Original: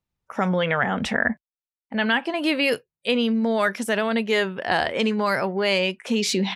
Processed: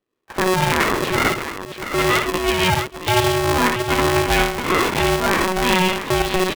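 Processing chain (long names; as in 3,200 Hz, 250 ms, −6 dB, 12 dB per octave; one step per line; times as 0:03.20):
multi-tap delay 63/65/129/653/676 ms −15/−5.5/−14/−19/−9.5 dB
linear-prediction vocoder at 8 kHz pitch kept
ring modulator with a square carrier 370 Hz
level +3 dB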